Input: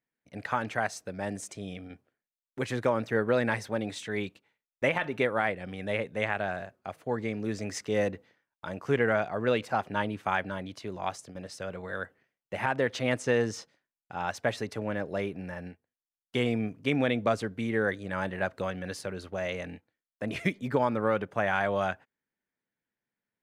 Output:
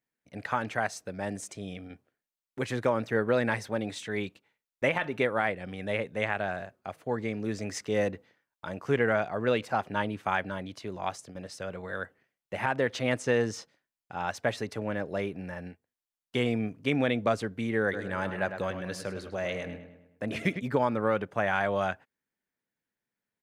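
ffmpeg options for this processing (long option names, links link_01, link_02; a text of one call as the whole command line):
ffmpeg -i in.wav -filter_complex "[0:a]asplit=3[link_01][link_02][link_03];[link_01]afade=type=out:start_time=17.92:duration=0.02[link_04];[link_02]asplit=2[link_05][link_06];[link_06]adelay=104,lowpass=frequency=3400:poles=1,volume=-9dB,asplit=2[link_07][link_08];[link_08]adelay=104,lowpass=frequency=3400:poles=1,volume=0.5,asplit=2[link_09][link_10];[link_10]adelay=104,lowpass=frequency=3400:poles=1,volume=0.5,asplit=2[link_11][link_12];[link_12]adelay=104,lowpass=frequency=3400:poles=1,volume=0.5,asplit=2[link_13][link_14];[link_14]adelay=104,lowpass=frequency=3400:poles=1,volume=0.5,asplit=2[link_15][link_16];[link_16]adelay=104,lowpass=frequency=3400:poles=1,volume=0.5[link_17];[link_05][link_07][link_09][link_11][link_13][link_15][link_17]amix=inputs=7:normalize=0,afade=type=in:start_time=17.92:duration=0.02,afade=type=out:start_time=20.59:duration=0.02[link_18];[link_03]afade=type=in:start_time=20.59:duration=0.02[link_19];[link_04][link_18][link_19]amix=inputs=3:normalize=0" out.wav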